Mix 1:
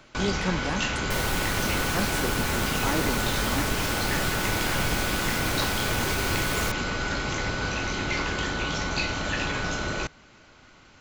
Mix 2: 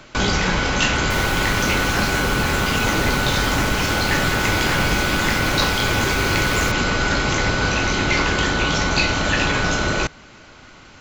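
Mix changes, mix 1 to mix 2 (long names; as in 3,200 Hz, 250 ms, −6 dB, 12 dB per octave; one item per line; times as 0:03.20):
speech: add high-frequency loss of the air 59 metres
first sound +9.0 dB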